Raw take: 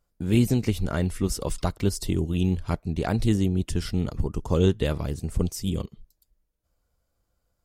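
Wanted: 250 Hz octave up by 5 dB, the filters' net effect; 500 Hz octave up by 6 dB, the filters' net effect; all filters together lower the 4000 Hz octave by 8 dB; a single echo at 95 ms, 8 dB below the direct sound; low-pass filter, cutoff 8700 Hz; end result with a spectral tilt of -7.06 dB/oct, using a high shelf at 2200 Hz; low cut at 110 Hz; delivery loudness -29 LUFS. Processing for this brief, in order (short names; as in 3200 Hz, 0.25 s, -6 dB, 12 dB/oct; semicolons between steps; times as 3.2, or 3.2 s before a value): HPF 110 Hz; LPF 8700 Hz; bell 250 Hz +5.5 dB; bell 500 Hz +6 dB; high shelf 2200 Hz -4 dB; bell 4000 Hz -7 dB; echo 95 ms -8 dB; gain -6.5 dB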